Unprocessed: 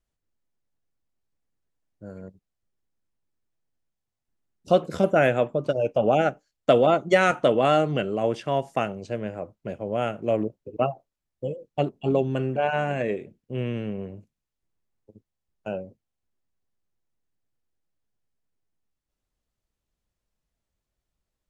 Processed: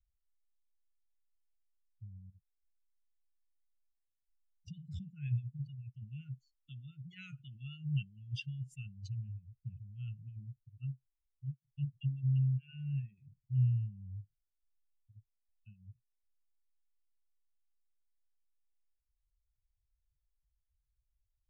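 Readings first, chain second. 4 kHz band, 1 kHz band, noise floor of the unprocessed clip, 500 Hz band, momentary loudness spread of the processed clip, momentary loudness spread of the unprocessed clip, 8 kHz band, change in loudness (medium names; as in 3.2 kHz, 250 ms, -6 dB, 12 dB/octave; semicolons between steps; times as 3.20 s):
-18.5 dB, under -40 dB, -85 dBFS, under -40 dB, 20 LU, 16 LU, no reading, -15.0 dB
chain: spectral contrast enhancement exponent 2.2; Chebyshev band-stop 130–2900 Hz, order 4; trim +2 dB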